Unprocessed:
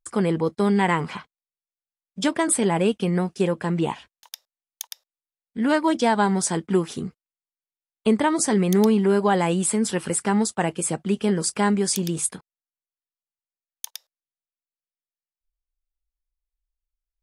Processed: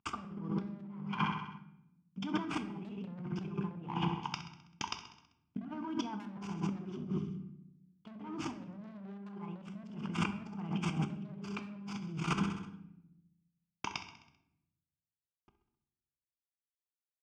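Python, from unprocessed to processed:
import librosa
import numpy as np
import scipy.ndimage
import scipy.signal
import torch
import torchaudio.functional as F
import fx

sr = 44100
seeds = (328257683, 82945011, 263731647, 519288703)

y = fx.cvsd(x, sr, bps=64000)
y = fx.air_absorb(y, sr, metres=280.0)
y = fx.fixed_phaser(y, sr, hz=2700.0, stages=8)
y = fx.dynamic_eq(y, sr, hz=180.0, q=0.98, threshold_db=-36.0, ratio=4.0, max_db=5)
y = fx.level_steps(y, sr, step_db=20)
y = fx.echo_feedback(y, sr, ms=65, feedback_pct=58, wet_db=-12.5)
y = 10.0 ** (-31.5 / 20.0) * np.tanh(y / 10.0 ** (-31.5 / 20.0))
y = fx.comb_fb(y, sr, f0_hz=200.0, decay_s=0.24, harmonics='all', damping=0.0, mix_pct=40)
y = fx.over_compress(y, sr, threshold_db=-55.0, ratio=-1.0)
y = scipy.signal.sosfilt(scipy.signal.butter(2, 87.0, 'highpass', fs=sr, output='sos'), y)
y = fx.room_shoebox(y, sr, seeds[0], volume_m3=250.0, walls='mixed', distance_m=0.41)
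y = y * librosa.db_to_amplitude(13.5)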